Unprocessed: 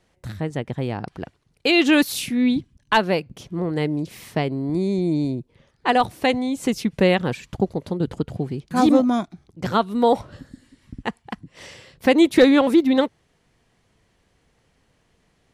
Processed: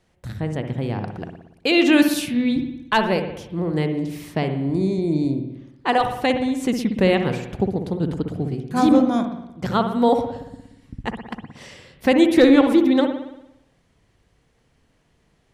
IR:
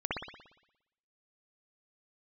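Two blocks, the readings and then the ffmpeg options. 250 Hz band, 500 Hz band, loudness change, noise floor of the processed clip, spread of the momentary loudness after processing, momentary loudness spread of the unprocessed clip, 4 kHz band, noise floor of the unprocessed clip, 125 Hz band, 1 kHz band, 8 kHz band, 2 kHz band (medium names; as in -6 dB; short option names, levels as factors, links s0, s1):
+1.5 dB, +0.5 dB, +0.5 dB, -63 dBFS, 16 LU, 16 LU, -1.0 dB, -65 dBFS, +1.5 dB, -0.5 dB, -1.5 dB, -0.5 dB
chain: -filter_complex "[0:a]asplit=2[s0][s1];[1:a]atrim=start_sample=2205,lowshelf=f=340:g=8[s2];[s1][s2]afir=irnorm=-1:irlink=0,volume=0.251[s3];[s0][s3]amix=inputs=2:normalize=0,volume=0.708"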